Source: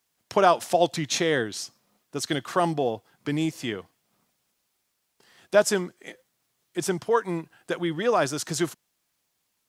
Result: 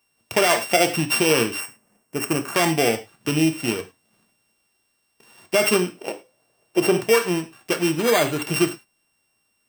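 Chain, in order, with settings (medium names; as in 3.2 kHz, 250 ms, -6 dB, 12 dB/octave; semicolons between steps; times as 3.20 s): sorted samples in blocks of 16 samples; 5.94–6.93 s: peaking EQ 580 Hz +12.5 dB 1.4 oct; 7.93–8.42 s: careless resampling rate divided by 8×, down filtered, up hold; gated-style reverb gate 130 ms falling, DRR 6.5 dB; peak limiter -13 dBFS, peak gain reduction 10 dB; 1.60–2.55 s: peaking EQ 3.7 kHz -13 dB 0.76 oct; trim +5.5 dB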